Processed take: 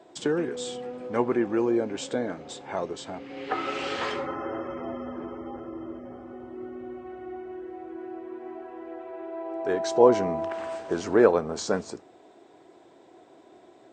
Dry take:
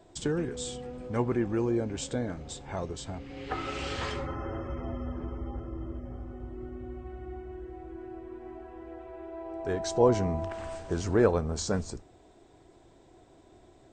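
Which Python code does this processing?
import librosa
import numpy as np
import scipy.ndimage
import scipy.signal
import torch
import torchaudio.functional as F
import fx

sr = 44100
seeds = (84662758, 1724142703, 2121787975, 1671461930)

y = scipy.signal.sosfilt(scipy.signal.butter(2, 280.0, 'highpass', fs=sr, output='sos'), x)
y = fx.high_shelf(y, sr, hz=5800.0, db=-11.5)
y = F.gain(torch.from_numpy(y), 6.0).numpy()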